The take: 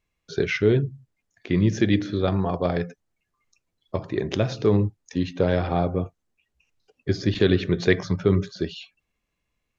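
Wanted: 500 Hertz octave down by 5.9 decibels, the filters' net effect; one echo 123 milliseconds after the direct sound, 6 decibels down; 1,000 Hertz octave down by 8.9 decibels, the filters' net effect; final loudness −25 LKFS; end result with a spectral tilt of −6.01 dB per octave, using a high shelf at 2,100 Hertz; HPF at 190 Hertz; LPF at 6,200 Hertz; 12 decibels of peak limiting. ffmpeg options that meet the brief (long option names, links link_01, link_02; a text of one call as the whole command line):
ffmpeg -i in.wav -af "highpass=190,lowpass=6200,equalizer=frequency=500:width_type=o:gain=-5.5,equalizer=frequency=1000:width_type=o:gain=-9,highshelf=frequency=2100:gain=-7.5,alimiter=limit=-23dB:level=0:latency=1,aecho=1:1:123:0.501,volume=9dB" out.wav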